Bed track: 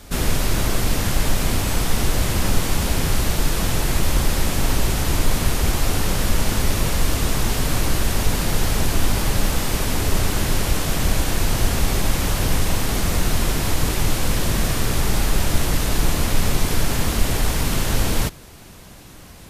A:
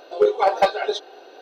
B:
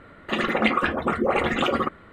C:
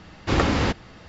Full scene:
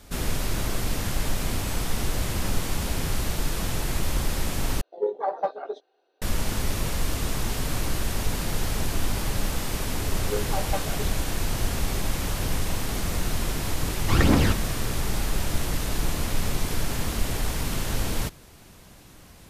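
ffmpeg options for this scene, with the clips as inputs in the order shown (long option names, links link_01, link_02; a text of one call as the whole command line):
ffmpeg -i bed.wav -i cue0.wav -i cue1.wav -i cue2.wav -filter_complex "[1:a]asplit=2[link_01][link_02];[0:a]volume=-7dB[link_03];[link_01]afwtdn=0.0562[link_04];[3:a]aphaser=in_gain=1:out_gain=1:delay=1.1:decay=0.61:speed=1.9:type=triangular[link_05];[link_03]asplit=2[link_06][link_07];[link_06]atrim=end=4.814[link_08];[link_04]atrim=end=1.41,asetpts=PTS-STARTPTS,volume=-9dB[link_09];[link_07]atrim=start=6.216[link_10];[link_02]atrim=end=1.41,asetpts=PTS-STARTPTS,volume=-13.5dB,afade=type=in:duration=0.004:curve=hsin,afade=type=out:start_time=1.406:duration=0.004:curve=hsin,adelay=10110[link_11];[link_05]atrim=end=1.08,asetpts=PTS-STARTPTS,volume=-3.5dB,afade=type=in:duration=0.004:curve=hsin,afade=type=out:start_time=1.076:duration=0.004:curve=hsin,adelay=13810[link_12];[link_08][link_09]acrossfade=duration=0.004:curve1=hsin:curve2=hsin[link_13];[link_13][link_10]acrossfade=duration=0.004:curve1=hsin:curve2=hsin[link_14];[link_14][link_11][link_12]amix=inputs=3:normalize=0" out.wav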